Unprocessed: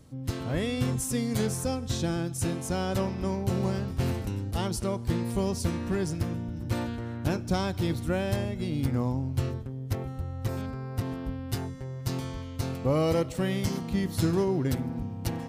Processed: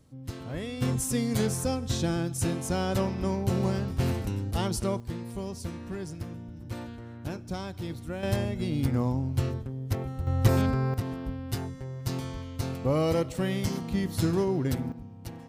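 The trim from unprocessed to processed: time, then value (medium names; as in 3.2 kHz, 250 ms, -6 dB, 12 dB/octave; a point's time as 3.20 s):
-6 dB
from 0.82 s +1 dB
from 5.00 s -7.5 dB
from 8.23 s +1 dB
from 10.27 s +9.5 dB
from 10.94 s -0.5 dB
from 14.92 s -9.5 dB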